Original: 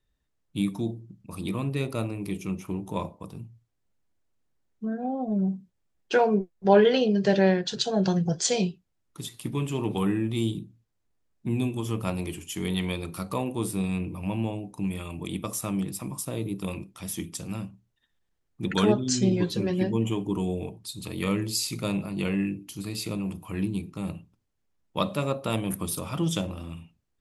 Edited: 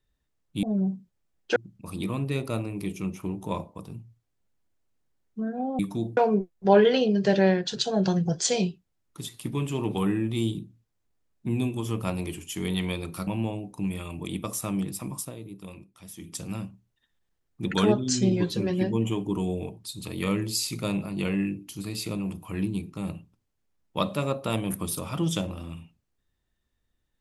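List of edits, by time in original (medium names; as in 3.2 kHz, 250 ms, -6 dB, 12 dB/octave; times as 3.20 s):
0.63–1.01 s: swap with 5.24–6.17 s
13.27–14.27 s: delete
16.20–17.35 s: dip -10 dB, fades 0.15 s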